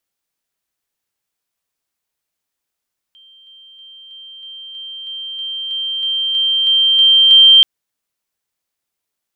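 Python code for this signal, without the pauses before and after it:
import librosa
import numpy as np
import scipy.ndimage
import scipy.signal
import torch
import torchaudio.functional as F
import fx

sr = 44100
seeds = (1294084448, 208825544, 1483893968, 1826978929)

y = fx.level_ladder(sr, hz=3150.0, from_db=-42.5, step_db=3.0, steps=14, dwell_s=0.32, gap_s=0.0)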